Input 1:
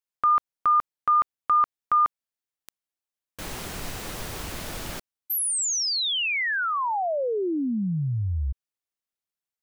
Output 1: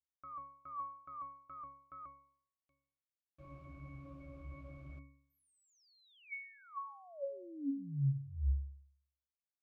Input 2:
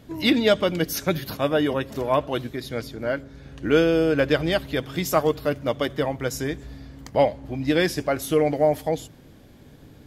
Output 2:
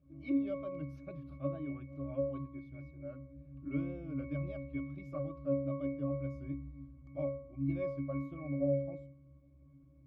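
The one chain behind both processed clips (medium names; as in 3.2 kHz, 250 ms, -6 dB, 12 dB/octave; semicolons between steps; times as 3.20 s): wow and flutter 2.1 Hz 120 cents; pitch-class resonator C#, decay 0.59 s; trim +1 dB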